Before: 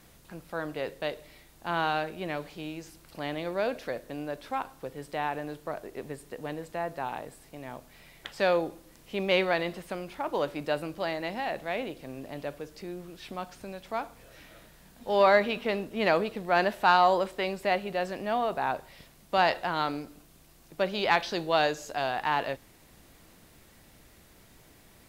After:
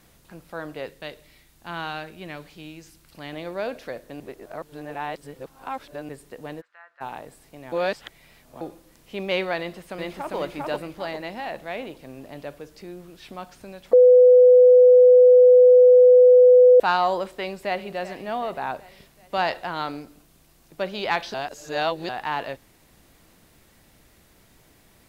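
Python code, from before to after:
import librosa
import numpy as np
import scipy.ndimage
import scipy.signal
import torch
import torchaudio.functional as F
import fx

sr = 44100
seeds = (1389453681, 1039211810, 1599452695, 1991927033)

y = fx.peak_eq(x, sr, hz=610.0, db=-6.0, octaves=2.0, at=(0.86, 3.33))
y = fx.ladder_bandpass(y, sr, hz=1600.0, resonance_pct=60, at=(6.6, 7.0), fade=0.02)
y = fx.echo_throw(y, sr, start_s=9.58, length_s=0.78, ms=400, feedback_pct=40, wet_db=-0.5)
y = fx.echo_throw(y, sr, start_s=17.39, length_s=0.52, ms=380, feedback_pct=55, wet_db=-14.0)
y = fx.edit(y, sr, fx.reverse_span(start_s=4.2, length_s=1.89),
    fx.reverse_span(start_s=7.72, length_s=0.89),
    fx.bleep(start_s=13.93, length_s=2.87, hz=499.0, db=-8.5),
    fx.reverse_span(start_s=21.34, length_s=0.75), tone=tone)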